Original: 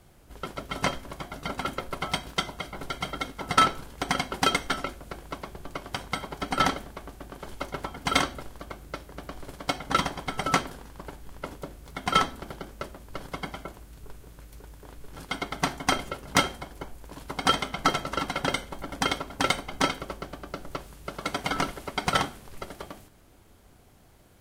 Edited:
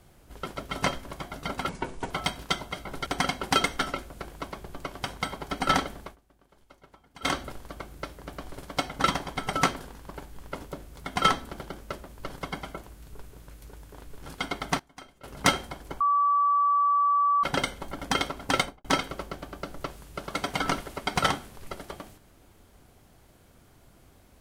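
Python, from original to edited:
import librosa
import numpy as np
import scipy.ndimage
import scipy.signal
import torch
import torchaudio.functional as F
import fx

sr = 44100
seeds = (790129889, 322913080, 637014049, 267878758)

y = fx.studio_fade_out(x, sr, start_s=19.49, length_s=0.26)
y = fx.edit(y, sr, fx.speed_span(start_s=1.69, length_s=0.29, speed=0.7),
    fx.cut(start_s=2.94, length_s=1.03),
    fx.fade_down_up(start_s=6.92, length_s=1.35, db=-20.5, fade_s=0.15, curve='qsin'),
    fx.fade_down_up(start_s=15.57, length_s=0.7, db=-22.0, fade_s=0.13, curve='log'),
    fx.bleep(start_s=16.91, length_s=1.43, hz=1150.0, db=-19.5), tone=tone)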